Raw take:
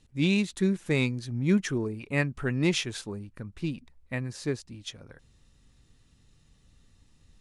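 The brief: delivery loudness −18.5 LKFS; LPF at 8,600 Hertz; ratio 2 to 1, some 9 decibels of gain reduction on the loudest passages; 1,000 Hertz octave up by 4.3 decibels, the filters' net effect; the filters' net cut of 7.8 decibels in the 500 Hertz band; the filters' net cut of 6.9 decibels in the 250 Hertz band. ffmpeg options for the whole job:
ffmpeg -i in.wav -af "lowpass=8600,equalizer=frequency=250:width_type=o:gain=-8.5,equalizer=frequency=500:width_type=o:gain=-8.5,equalizer=frequency=1000:width_type=o:gain=8.5,acompressor=threshold=-40dB:ratio=2,volume=21.5dB" out.wav

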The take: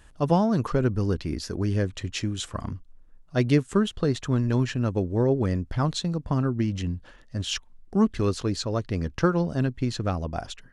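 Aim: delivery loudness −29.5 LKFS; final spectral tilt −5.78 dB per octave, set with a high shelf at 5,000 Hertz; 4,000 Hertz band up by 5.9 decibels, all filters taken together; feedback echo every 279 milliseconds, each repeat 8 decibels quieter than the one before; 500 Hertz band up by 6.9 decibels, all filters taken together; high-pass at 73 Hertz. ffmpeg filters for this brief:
ffmpeg -i in.wav -af "highpass=73,equalizer=frequency=500:width_type=o:gain=8.5,equalizer=frequency=4000:width_type=o:gain=4.5,highshelf=frequency=5000:gain=6,aecho=1:1:279|558|837|1116|1395:0.398|0.159|0.0637|0.0255|0.0102,volume=-7dB" out.wav

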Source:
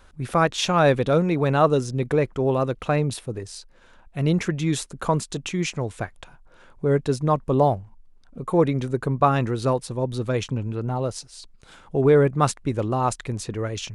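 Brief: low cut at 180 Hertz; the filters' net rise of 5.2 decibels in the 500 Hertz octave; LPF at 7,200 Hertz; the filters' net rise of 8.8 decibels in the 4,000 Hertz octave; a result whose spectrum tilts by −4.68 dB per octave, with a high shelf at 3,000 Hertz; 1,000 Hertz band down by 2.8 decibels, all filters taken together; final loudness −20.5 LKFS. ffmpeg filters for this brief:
ffmpeg -i in.wav -af "highpass=180,lowpass=7200,equalizer=frequency=500:width_type=o:gain=8,equalizer=frequency=1000:width_type=o:gain=-8.5,highshelf=frequency=3000:gain=5.5,equalizer=frequency=4000:width_type=o:gain=7.5" out.wav

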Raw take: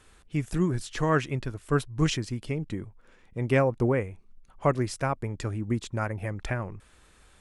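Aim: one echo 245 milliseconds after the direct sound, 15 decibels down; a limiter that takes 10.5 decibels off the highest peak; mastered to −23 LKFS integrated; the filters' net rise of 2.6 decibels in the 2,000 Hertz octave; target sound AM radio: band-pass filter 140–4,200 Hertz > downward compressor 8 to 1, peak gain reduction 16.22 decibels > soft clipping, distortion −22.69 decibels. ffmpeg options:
ffmpeg -i in.wav -af "equalizer=frequency=2000:width_type=o:gain=3.5,alimiter=limit=-20.5dB:level=0:latency=1,highpass=140,lowpass=4200,aecho=1:1:245:0.178,acompressor=threshold=-41dB:ratio=8,asoftclip=threshold=-31.5dB,volume=24dB" out.wav

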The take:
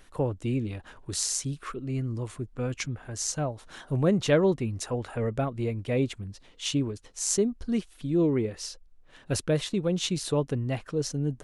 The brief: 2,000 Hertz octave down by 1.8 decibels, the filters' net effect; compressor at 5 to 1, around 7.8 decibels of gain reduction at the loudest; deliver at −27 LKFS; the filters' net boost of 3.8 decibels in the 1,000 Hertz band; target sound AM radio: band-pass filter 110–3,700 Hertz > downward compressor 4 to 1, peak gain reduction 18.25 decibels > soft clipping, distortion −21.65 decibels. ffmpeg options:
ffmpeg -i in.wav -af "equalizer=frequency=1000:width_type=o:gain=6,equalizer=frequency=2000:width_type=o:gain=-4,acompressor=threshold=-25dB:ratio=5,highpass=110,lowpass=3700,acompressor=threshold=-46dB:ratio=4,asoftclip=threshold=-36dB,volume=21.5dB" out.wav

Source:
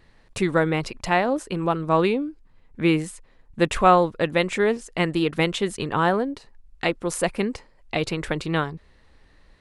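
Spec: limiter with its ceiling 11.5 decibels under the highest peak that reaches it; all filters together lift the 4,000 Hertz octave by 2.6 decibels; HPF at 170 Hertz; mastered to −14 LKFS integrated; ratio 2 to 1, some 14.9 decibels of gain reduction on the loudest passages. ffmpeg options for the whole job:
ffmpeg -i in.wav -af "highpass=170,equalizer=frequency=4000:width_type=o:gain=3.5,acompressor=threshold=-38dB:ratio=2,volume=24.5dB,alimiter=limit=-2.5dB:level=0:latency=1" out.wav

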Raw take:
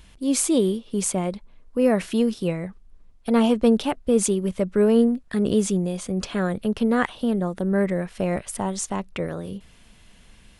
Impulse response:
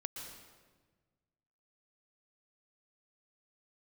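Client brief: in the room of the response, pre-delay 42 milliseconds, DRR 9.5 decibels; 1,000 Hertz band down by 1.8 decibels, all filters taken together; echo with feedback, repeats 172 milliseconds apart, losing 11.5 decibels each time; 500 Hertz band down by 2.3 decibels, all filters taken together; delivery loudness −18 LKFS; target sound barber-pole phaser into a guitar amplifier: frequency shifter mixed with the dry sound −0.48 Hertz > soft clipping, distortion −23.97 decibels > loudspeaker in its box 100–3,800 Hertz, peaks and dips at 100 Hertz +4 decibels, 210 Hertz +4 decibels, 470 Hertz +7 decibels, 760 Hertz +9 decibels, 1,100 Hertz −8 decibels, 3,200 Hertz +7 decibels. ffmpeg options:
-filter_complex "[0:a]equalizer=frequency=500:width_type=o:gain=-8,equalizer=frequency=1000:width_type=o:gain=-5,aecho=1:1:172|344|516:0.266|0.0718|0.0194,asplit=2[link_01][link_02];[1:a]atrim=start_sample=2205,adelay=42[link_03];[link_02][link_03]afir=irnorm=-1:irlink=0,volume=-8dB[link_04];[link_01][link_04]amix=inputs=2:normalize=0,asplit=2[link_05][link_06];[link_06]afreqshift=-0.48[link_07];[link_05][link_07]amix=inputs=2:normalize=1,asoftclip=threshold=-14.5dB,highpass=100,equalizer=frequency=100:width_type=q:width=4:gain=4,equalizer=frequency=210:width_type=q:width=4:gain=4,equalizer=frequency=470:width_type=q:width=4:gain=7,equalizer=frequency=760:width_type=q:width=4:gain=9,equalizer=frequency=1100:width_type=q:width=4:gain=-8,equalizer=frequency=3200:width_type=q:width=4:gain=7,lowpass=frequency=3800:width=0.5412,lowpass=frequency=3800:width=1.3066,volume=8dB"

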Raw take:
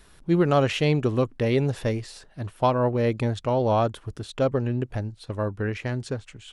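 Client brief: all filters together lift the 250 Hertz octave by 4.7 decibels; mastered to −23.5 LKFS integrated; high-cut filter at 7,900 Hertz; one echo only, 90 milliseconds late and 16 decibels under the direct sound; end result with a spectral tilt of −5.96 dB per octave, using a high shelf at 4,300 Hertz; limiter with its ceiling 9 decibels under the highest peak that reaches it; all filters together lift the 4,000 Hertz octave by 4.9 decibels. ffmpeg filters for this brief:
ffmpeg -i in.wav -af "lowpass=7900,equalizer=frequency=250:width_type=o:gain=6,equalizer=frequency=4000:width_type=o:gain=8.5,highshelf=frequency=4300:gain=-3.5,alimiter=limit=-15.5dB:level=0:latency=1,aecho=1:1:90:0.158,volume=2.5dB" out.wav

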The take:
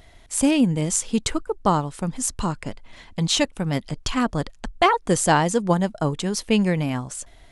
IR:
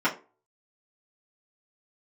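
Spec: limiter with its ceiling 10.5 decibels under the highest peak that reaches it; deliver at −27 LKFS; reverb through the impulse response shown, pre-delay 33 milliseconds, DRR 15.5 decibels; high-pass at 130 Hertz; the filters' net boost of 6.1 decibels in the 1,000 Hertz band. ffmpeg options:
-filter_complex "[0:a]highpass=130,equalizer=frequency=1000:width_type=o:gain=7.5,alimiter=limit=-11.5dB:level=0:latency=1,asplit=2[link_01][link_02];[1:a]atrim=start_sample=2205,adelay=33[link_03];[link_02][link_03]afir=irnorm=-1:irlink=0,volume=-29.5dB[link_04];[link_01][link_04]amix=inputs=2:normalize=0,volume=-3.5dB"

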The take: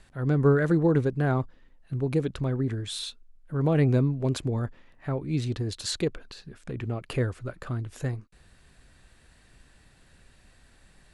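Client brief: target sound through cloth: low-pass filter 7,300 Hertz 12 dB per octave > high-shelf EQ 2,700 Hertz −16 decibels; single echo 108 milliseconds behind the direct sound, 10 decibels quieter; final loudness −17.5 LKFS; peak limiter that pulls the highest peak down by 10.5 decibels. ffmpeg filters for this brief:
ffmpeg -i in.wav -af "alimiter=limit=-21.5dB:level=0:latency=1,lowpass=7300,highshelf=frequency=2700:gain=-16,aecho=1:1:108:0.316,volume=14dB" out.wav

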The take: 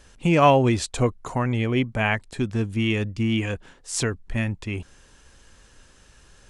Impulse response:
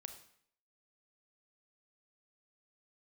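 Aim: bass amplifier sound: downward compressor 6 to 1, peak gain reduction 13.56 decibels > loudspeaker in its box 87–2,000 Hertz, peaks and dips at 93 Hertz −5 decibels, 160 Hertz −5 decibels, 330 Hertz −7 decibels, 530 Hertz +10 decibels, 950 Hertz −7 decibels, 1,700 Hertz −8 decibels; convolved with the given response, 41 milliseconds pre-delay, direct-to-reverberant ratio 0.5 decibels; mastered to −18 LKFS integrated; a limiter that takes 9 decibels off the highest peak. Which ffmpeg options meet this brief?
-filter_complex "[0:a]alimiter=limit=-13dB:level=0:latency=1,asplit=2[link_01][link_02];[1:a]atrim=start_sample=2205,adelay=41[link_03];[link_02][link_03]afir=irnorm=-1:irlink=0,volume=4dB[link_04];[link_01][link_04]amix=inputs=2:normalize=0,acompressor=threshold=-28dB:ratio=6,highpass=frequency=87:width=0.5412,highpass=frequency=87:width=1.3066,equalizer=frequency=93:width_type=q:width=4:gain=-5,equalizer=frequency=160:width_type=q:width=4:gain=-5,equalizer=frequency=330:width_type=q:width=4:gain=-7,equalizer=frequency=530:width_type=q:width=4:gain=10,equalizer=frequency=950:width_type=q:width=4:gain=-7,equalizer=frequency=1700:width_type=q:width=4:gain=-8,lowpass=frequency=2000:width=0.5412,lowpass=frequency=2000:width=1.3066,volume=15.5dB"

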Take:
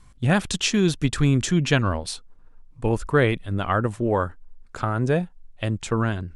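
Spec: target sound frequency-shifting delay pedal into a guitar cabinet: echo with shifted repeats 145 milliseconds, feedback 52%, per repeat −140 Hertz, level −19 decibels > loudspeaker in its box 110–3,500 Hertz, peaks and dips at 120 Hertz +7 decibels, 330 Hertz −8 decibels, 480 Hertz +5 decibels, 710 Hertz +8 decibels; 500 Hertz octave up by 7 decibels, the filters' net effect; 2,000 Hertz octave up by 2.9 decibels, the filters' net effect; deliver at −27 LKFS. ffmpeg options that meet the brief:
ffmpeg -i in.wav -filter_complex "[0:a]equalizer=frequency=500:width_type=o:gain=4.5,equalizer=frequency=2000:width_type=o:gain=3.5,asplit=5[link_01][link_02][link_03][link_04][link_05];[link_02]adelay=145,afreqshift=-140,volume=-19dB[link_06];[link_03]adelay=290,afreqshift=-280,volume=-24.7dB[link_07];[link_04]adelay=435,afreqshift=-420,volume=-30.4dB[link_08];[link_05]adelay=580,afreqshift=-560,volume=-36dB[link_09];[link_01][link_06][link_07][link_08][link_09]amix=inputs=5:normalize=0,highpass=110,equalizer=frequency=120:width_type=q:width=4:gain=7,equalizer=frequency=330:width_type=q:width=4:gain=-8,equalizer=frequency=480:width_type=q:width=4:gain=5,equalizer=frequency=710:width_type=q:width=4:gain=8,lowpass=frequency=3500:width=0.5412,lowpass=frequency=3500:width=1.3066,volume=-7dB" out.wav

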